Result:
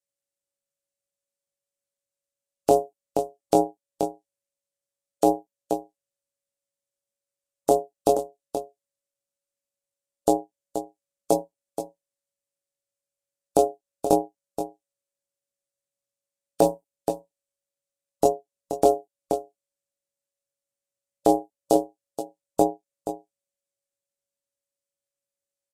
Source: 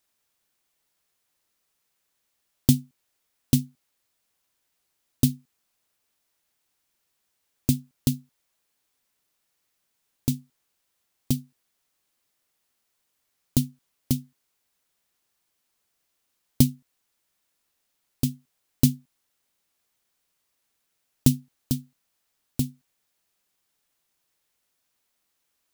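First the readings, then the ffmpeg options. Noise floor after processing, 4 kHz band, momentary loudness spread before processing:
under -85 dBFS, -6.0 dB, 11 LU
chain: -filter_complex "[0:a]aeval=exprs='if(lt(val(0),0),0.447*val(0),val(0))':c=same,flanger=delay=16:depth=6.2:speed=0.19,afftdn=nr=28:nf=-43,acrossover=split=3100[a][b];[b]acompressor=threshold=-37dB:ratio=4:attack=1:release=60[c];[a][c]amix=inputs=2:normalize=0,lowshelf=f=320:g=5.5,asplit=2[d][e];[e]acompressor=threshold=-35dB:ratio=6,volume=0dB[f];[d][f]amix=inputs=2:normalize=0,aeval=exprs='val(0)*sin(2*PI*560*n/s)':c=same,equalizer=f=125:t=o:w=1:g=6,equalizer=f=1k:t=o:w=1:g=-3,equalizer=f=8k:t=o:w=1:g=10,aecho=1:1:477:0.188,aresample=32000,aresample=44100,alimiter=level_in=15dB:limit=-1dB:release=50:level=0:latency=1,volume=-4dB"

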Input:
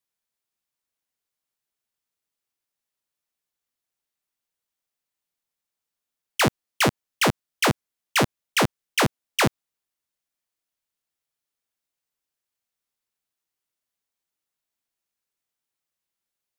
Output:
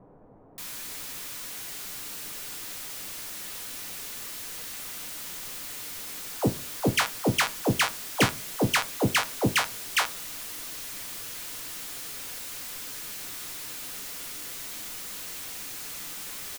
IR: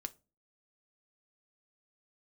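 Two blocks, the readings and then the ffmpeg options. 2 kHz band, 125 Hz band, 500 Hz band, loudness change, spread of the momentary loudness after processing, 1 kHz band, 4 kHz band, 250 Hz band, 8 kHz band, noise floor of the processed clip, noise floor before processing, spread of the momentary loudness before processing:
-1.5 dB, -1.5 dB, -3.0 dB, -7.0 dB, 10 LU, -3.0 dB, -0.5 dB, -1.0 dB, +2.5 dB, -38 dBFS, under -85 dBFS, 1 LU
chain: -filter_complex "[0:a]aeval=exprs='val(0)+0.5*0.0398*sgn(val(0))':c=same,acrossover=split=760[a][b];[b]adelay=580[c];[a][c]amix=inputs=2:normalize=0[d];[1:a]atrim=start_sample=2205[e];[d][e]afir=irnorm=-1:irlink=0"

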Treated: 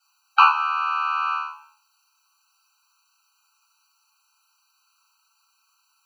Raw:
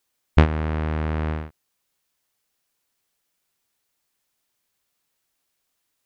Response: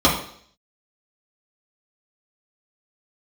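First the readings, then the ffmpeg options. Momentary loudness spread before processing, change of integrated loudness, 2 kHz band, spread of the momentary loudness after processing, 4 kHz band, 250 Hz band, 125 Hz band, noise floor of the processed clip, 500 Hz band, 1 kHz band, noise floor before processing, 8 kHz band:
12 LU, +3.0 dB, +8.0 dB, 11 LU, +8.0 dB, under -40 dB, under -40 dB, -68 dBFS, under -35 dB, +14.0 dB, -76 dBFS, n/a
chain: -filter_complex "[0:a]tiltshelf=f=1.4k:g=-3.5[a];[1:a]atrim=start_sample=2205,asetrate=48510,aresample=44100[b];[a][b]afir=irnorm=-1:irlink=0,acrossover=split=4300[c][d];[d]acompressor=threshold=-52dB:ratio=4:attack=1:release=60[e];[c][e]amix=inputs=2:normalize=0,afftfilt=real='re*eq(mod(floor(b*sr/1024/780),2),1)':imag='im*eq(mod(floor(b*sr/1024/780),2),1)':win_size=1024:overlap=0.75,volume=-6dB"

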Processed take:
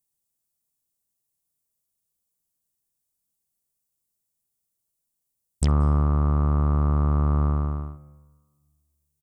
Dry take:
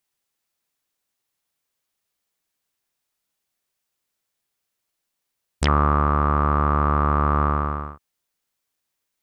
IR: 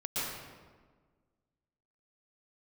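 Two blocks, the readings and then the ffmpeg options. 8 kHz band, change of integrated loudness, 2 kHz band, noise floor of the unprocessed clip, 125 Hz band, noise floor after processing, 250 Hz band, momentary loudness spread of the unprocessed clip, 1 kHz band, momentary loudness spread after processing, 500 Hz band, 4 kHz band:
0.0 dB, -2.5 dB, -16.5 dB, -80 dBFS, +2.0 dB, -80 dBFS, -1.5 dB, 8 LU, -13.0 dB, 7 LU, -7.0 dB, -11.0 dB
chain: -filter_complex "[0:a]firequalizer=gain_entry='entry(150,0);entry(310,-7);entry(1600,-19);entry(8200,0)':delay=0.05:min_phase=1,asplit=2[a][b];[1:a]atrim=start_sample=2205,adelay=64[c];[b][c]afir=irnorm=-1:irlink=0,volume=-27.5dB[d];[a][d]amix=inputs=2:normalize=0,volume=1.5dB"

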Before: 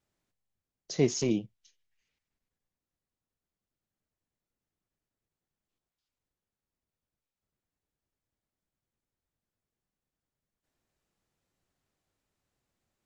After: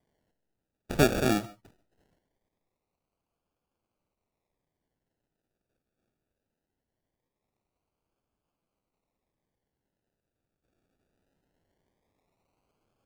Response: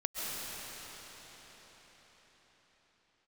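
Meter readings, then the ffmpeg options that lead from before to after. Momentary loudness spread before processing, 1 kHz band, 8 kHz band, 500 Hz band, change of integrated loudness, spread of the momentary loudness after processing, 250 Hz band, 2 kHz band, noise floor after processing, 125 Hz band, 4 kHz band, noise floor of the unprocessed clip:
8 LU, +17.0 dB, n/a, +2.5 dB, +3.0 dB, 9 LU, +2.0 dB, +12.0 dB, under -85 dBFS, +2.5 dB, +3.5 dB, under -85 dBFS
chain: -filter_complex "[0:a]equalizer=f=2.4k:w=1.1:g=14,acrusher=samples=33:mix=1:aa=0.000001:lfo=1:lforange=19.8:lforate=0.21,asplit=2[a][b];[1:a]atrim=start_sample=2205,afade=t=out:st=0.2:d=0.01,atrim=end_sample=9261[c];[b][c]afir=irnorm=-1:irlink=0,volume=-11.5dB[d];[a][d]amix=inputs=2:normalize=0"

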